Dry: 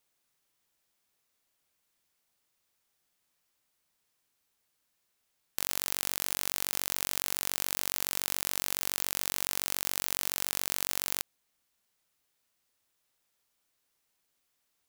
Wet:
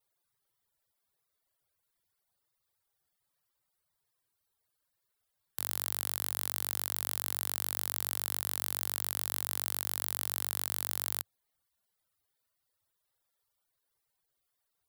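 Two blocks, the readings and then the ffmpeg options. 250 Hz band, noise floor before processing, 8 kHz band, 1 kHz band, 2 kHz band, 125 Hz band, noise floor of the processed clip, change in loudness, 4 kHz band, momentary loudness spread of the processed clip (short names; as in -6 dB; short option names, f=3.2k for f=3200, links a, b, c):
-7.0 dB, -78 dBFS, -4.0 dB, -2.5 dB, -6.0 dB, +1.5 dB, -83 dBFS, -2.0 dB, -5.5 dB, 1 LU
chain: -af "afftfilt=real='re*gte(hypot(re,im),0.0001)':imag='im*gte(hypot(re,im),0.0001)':win_size=1024:overlap=0.75,equalizer=f=100:t=o:w=0.67:g=6,equalizer=f=250:t=o:w=0.67:g=-9,equalizer=f=2.5k:t=o:w=0.67:g=-7,equalizer=f=6.3k:t=o:w=0.67:g=-7,aeval=exprs='0.531*(cos(1*acos(clip(val(0)/0.531,-1,1)))-cos(1*PI/2))+0.075*(cos(4*acos(clip(val(0)/0.531,-1,1)))-cos(4*PI/2))':c=same"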